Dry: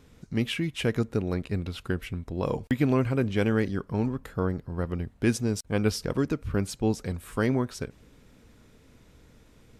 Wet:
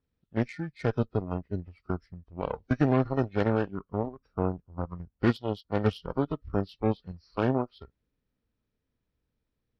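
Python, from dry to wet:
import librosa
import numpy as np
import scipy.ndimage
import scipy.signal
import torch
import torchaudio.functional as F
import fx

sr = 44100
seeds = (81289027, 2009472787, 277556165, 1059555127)

y = fx.freq_compress(x, sr, knee_hz=1100.0, ratio=1.5)
y = fx.low_shelf(y, sr, hz=100.0, db=4.0)
y = fx.cheby_harmonics(y, sr, harmonics=(7,), levels_db=(-19,), full_scale_db=-10.0)
y = fx.noise_reduce_blind(y, sr, reduce_db=14)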